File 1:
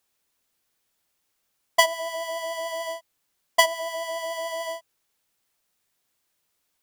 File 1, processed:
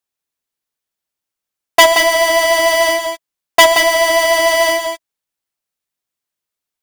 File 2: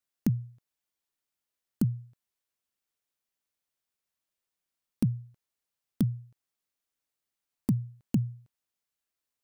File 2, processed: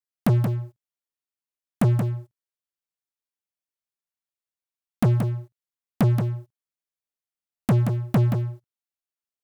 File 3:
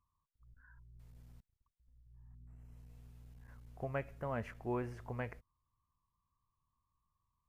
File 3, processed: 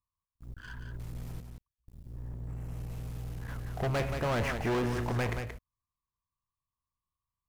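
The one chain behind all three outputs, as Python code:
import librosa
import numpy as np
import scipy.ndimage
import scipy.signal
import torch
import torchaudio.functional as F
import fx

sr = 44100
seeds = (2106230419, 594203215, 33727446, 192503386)

p1 = fx.leveller(x, sr, passes=5)
y = p1 + fx.echo_single(p1, sr, ms=177, db=-6.5, dry=0)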